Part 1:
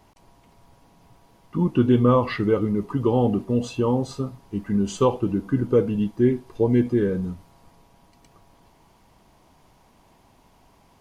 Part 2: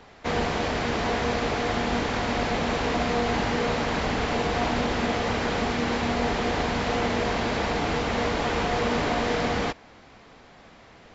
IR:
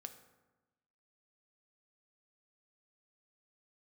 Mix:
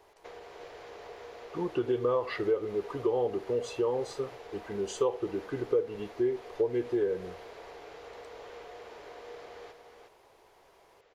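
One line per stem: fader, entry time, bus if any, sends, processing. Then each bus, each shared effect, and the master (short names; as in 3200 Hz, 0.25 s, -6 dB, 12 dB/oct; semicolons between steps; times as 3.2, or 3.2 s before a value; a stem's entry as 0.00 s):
-5.5 dB, 0.00 s, no send, no echo send, dry
-16.0 dB, 0.00 s, no send, echo send -6.5 dB, compressor, threshold -31 dBFS, peak gain reduction 10 dB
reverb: off
echo: echo 0.36 s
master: resonant low shelf 310 Hz -9.5 dB, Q 3; compressor 3:1, threshold -26 dBFS, peak gain reduction 9.5 dB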